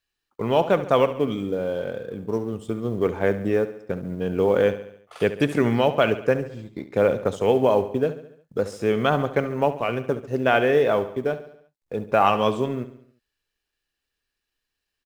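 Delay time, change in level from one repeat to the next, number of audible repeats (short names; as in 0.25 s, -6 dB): 70 ms, -5.5 dB, 4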